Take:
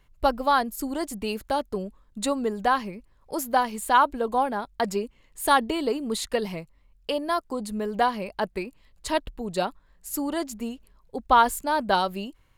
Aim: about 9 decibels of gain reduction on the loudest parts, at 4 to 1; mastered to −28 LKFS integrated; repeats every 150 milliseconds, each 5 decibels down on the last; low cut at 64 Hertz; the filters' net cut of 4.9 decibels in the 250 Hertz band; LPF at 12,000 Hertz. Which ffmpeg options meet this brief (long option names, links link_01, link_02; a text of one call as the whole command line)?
ffmpeg -i in.wav -af "highpass=64,lowpass=12000,equalizer=frequency=250:width_type=o:gain=-6,acompressor=threshold=-24dB:ratio=4,aecho=1:1:150|300|450|600|750|900|1050:0.562|0.315|0.176|0.0988|0.0553|0.031|0.0173,volume=2dB" out.wav